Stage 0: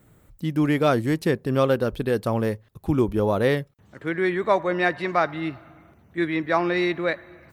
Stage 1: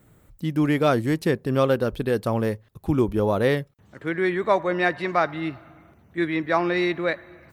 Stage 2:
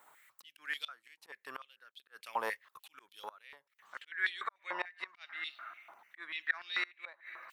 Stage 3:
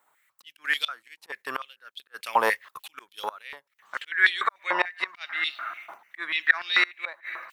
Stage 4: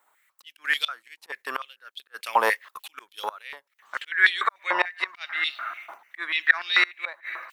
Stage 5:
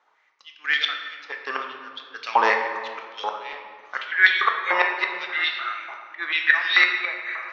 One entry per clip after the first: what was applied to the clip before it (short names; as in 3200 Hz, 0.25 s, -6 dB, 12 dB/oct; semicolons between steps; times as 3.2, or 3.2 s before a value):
nothing audible
auto swell 0.554 s; flipped gate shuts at -18 dBFS, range -27 dB; stepped high-pass 6.8 Hz 930–3500 Hz; gain -2 dB
gate -57 dBFS, range -9 dB; AGC gain up to 10 dB; gain +3.5 dB
bell 120 Hz -10 dB 1.7 oct; gain +1.5 dB
steep low-pass 6300 Hz 72 dB/oct; reverb RT60 1.9 s, pre-delay 3 ms, DRR 2 dB; gain +1.5 dB